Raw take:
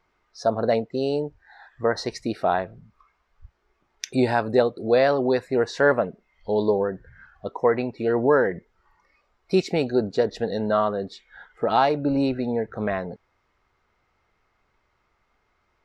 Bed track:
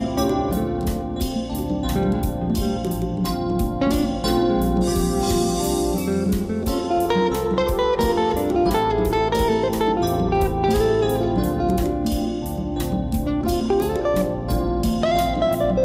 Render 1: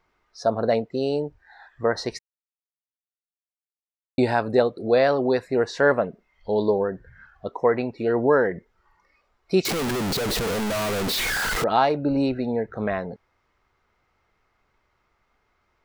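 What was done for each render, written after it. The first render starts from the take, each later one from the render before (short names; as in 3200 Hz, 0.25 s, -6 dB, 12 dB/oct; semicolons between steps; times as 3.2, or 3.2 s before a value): 2.19–4.18 mute; 9.65–11.64 infinite clipping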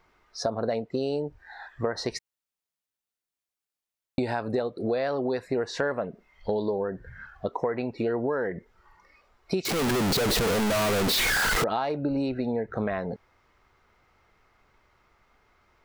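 in parallel at -2 dB: limiter -14 dBFS, peak gain reduction 7 dB; on the sum: compressor 6:1, threshold -25 dBFS, peak gain reduction 14 dB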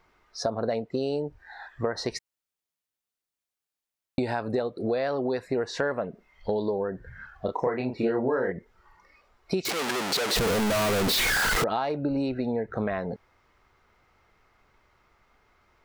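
7.45–8.52 doubler 31 ms -3.5 dB; 9.7–10.36 weighting filter A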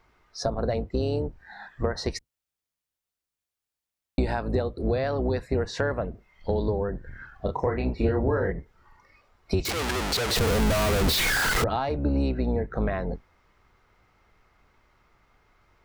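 octaver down 2 oct, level +3 dB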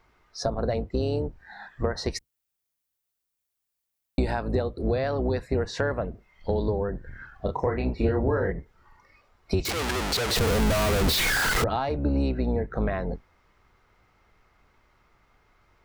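2.13–4.31 high shelf 10000 Hz +9.5 dB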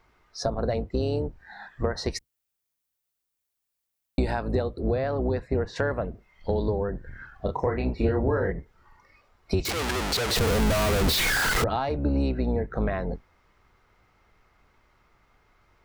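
4.8–5.76 LPF 2100 Hz 6 dB/oct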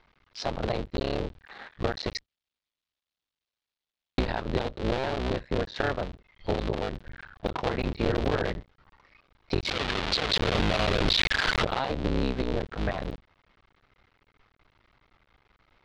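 cycle switcher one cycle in 2, muted; synth low-pass 3800 Hz, resonance Q 1.9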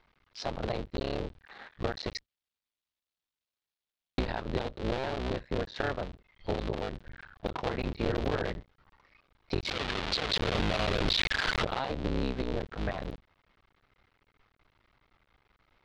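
gain -4 dB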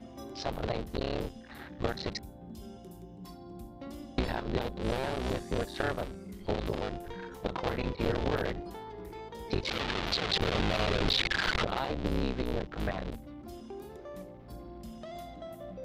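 add bed track -24 dB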